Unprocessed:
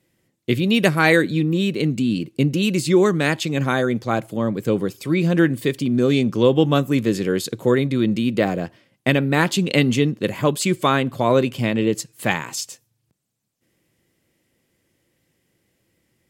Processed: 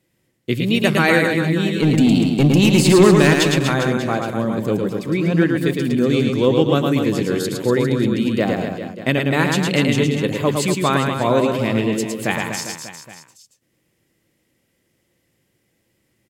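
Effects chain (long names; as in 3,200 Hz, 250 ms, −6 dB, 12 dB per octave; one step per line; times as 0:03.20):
0:01.82–0:03.49: leveller curve on the samples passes 2
0:04.71–0:05.61: high-shelf EQ 6,800 Hz −8 dB
reverse bouncing-ball delay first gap 110 ms, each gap 1.2×, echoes 5
level −1 dB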